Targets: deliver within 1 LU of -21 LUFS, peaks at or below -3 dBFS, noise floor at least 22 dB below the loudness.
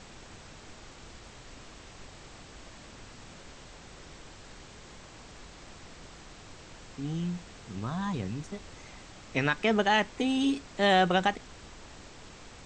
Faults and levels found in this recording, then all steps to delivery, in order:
noise floor -50 dBFS; noise floor target -51 dBFS; loudness -29.0 LUFS; peak -12.0 dBFS; loudness target -21.0 LUFS
-> noise print and reduce 6 dB; gain +8 dB

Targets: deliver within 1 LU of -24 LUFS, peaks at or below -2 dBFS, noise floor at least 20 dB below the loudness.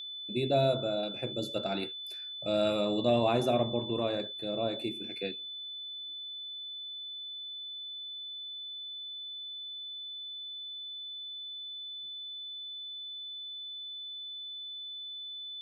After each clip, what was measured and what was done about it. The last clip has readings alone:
steady tone 3500 Hz; tone level -39 dBFS; loudness -34.5 LUFS; peak -15.5 dBFS; loudness target -24.0 LUFS
-> notch 3500 Hz, Q 30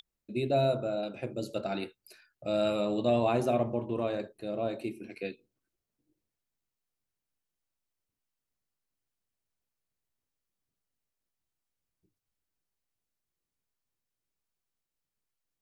steady tone none; loudness -31.5 LUFS; peak -15.5 dBFS; loudness target -24.0 LUFS
-> gain +7.5 dB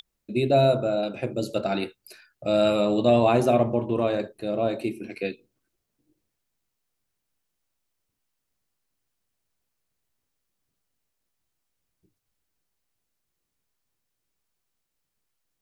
loudness -24.0 LUFS; peak -8.0 dBFS; noise floor -80 dBFS

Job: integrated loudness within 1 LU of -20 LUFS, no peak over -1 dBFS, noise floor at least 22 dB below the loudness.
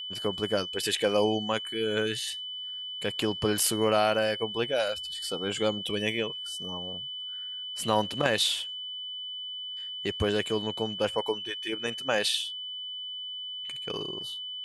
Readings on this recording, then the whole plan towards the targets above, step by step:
steady tone 3000 Hz; tone level -35 dBFS; loudness -29.5 LUFS; peak -7.5 dBFS; loudness target -20.0 LUFS
-> notch 3000 Hz, Q 30; gain +9.5 dB; limiter -1 dBFS

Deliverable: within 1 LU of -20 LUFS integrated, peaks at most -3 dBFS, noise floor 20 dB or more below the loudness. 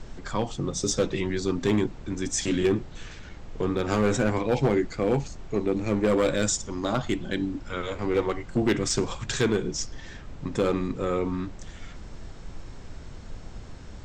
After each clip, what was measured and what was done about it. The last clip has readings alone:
clipped 0.8%; flat tops at -16.0 dBFS; noise floor -42 dBFS; noise floor target -47 dBFS; loudness -27.0 LUFS; peak -16.0 dBFS; loudness target -20.0 LUFS
-> clip repair -16 dBFS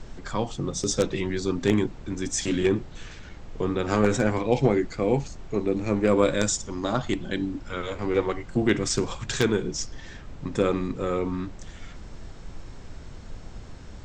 clipped 0.0%; noise floor -42 dBFS; noise floor target -46 dBFS
-> noise print and reduce 6 dB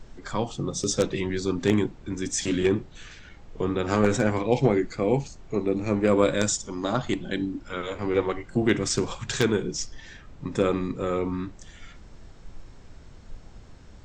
noise floor -48 dBFS; loudness -26.0 LUFS; peak -7.0 dBFS; loudness target -20.0 LUFS
-> gain +6 dB; limiter -3 dBFS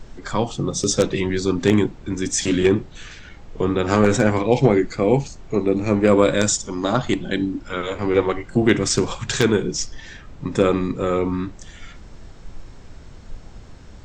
loudness -20.5 LUFS; peak -3.0 dBFS; noise floor -42 dBFS

